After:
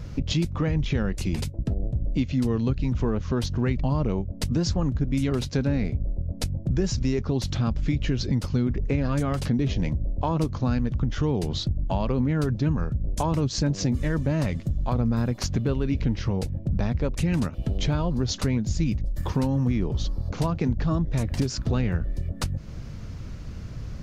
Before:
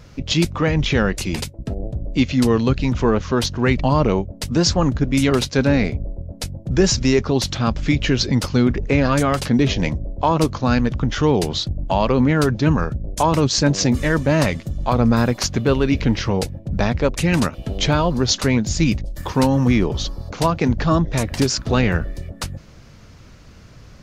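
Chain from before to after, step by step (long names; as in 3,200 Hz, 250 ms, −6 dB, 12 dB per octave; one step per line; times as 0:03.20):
low-shelf EQ 290 Hz +11.5 dB
downward compressor 3 to 1, threshold −24 dBFS, peak gain reduction 15.5 dB
level −1.5 dB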